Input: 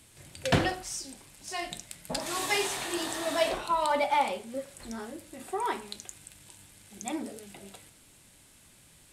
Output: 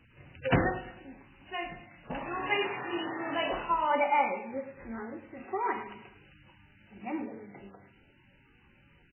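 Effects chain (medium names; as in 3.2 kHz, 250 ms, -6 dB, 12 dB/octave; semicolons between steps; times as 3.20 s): 4.01–6.07 s: peaking EQ 2 kHz +3 dB 0.53 oct; band-stop 640 Hz, Q 12; feedback delay 107 ms, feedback 44%, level -13 dB; MP3 8 kbps 8 kHz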